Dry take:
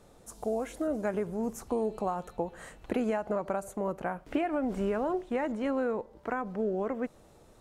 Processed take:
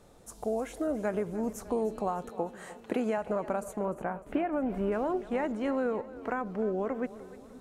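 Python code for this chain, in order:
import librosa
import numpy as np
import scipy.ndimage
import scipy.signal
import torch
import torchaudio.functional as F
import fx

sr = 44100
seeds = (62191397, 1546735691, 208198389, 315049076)

y = fx.highpass(x, sr, hz=160.0, slope=12, at=(2.29, 3.18))
y = fx.peak_eq(y, sr, hz=6800.0, db=-13.5, octaves=1.8, at=(3.85, 4.92))
y = fx.echo_split(y, sr, split_hz=410.0, low_ms=523, high_ms=302, feedback_pct=52, wet_db=-16)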